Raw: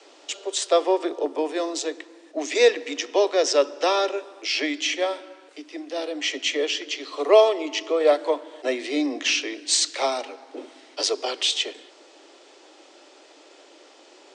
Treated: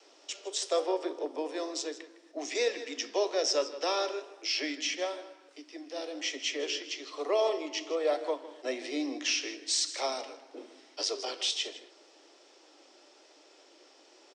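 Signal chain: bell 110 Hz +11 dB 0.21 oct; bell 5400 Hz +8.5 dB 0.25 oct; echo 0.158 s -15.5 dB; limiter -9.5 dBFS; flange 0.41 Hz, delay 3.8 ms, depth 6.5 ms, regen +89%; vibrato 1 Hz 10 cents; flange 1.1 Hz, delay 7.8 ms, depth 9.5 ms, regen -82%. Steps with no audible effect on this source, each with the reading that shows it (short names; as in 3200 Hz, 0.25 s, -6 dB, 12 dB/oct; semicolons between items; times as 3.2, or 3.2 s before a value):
bell 110 Hz: input band starts at 240 Hz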